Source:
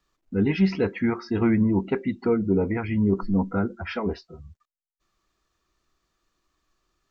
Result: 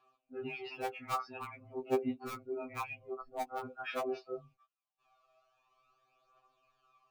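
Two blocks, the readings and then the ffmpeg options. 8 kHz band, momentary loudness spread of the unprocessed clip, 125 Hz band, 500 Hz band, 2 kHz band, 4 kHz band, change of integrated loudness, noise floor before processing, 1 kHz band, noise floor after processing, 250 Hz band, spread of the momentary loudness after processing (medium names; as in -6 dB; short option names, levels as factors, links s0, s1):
no reading, 8 LU, -27.0 dB, -11.5 dB, -9.5 dB, -7.5 dB, -15.5 dB, under -85 dBFS, -3.0 dB, under -85 dBFS, -21.5 dB, 10 LU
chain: -filter_complex "[0:a]asubboost=boost=5.5:cutoff=84,areverse,acompressor=threshold=0.02:ratio=5,areverse,asplit=3[s0][s1][s2];[s0]bandpass=f=730:t=q:w=8,volume=1[s3];[s1]bandpass=f=1090:t=q:w=8,volume=0.501[s4];[s2]bandpass=f=2440:t=q:w=8,volume=0.355[s5];[s3][s4][s5]amix=inputs=3:normalize=0,aphaser=in_gain=1:out_gain=1:delay=1.6:decay=0.55:speed=0.47:type=triangular,asplit=2[s6][s7];[s7]acrusher=bits=6:mix=0:aa=0.000001,volume=0.299[s8];[s6][s8]amix=inputs=2:normalize=0,afftfilt=real='re*2.45*eq(mod(b,6),0)':imag='im*2.45*eq(mod(b,6),0)':win_size=2048:overlap=0.75,volume=7.5"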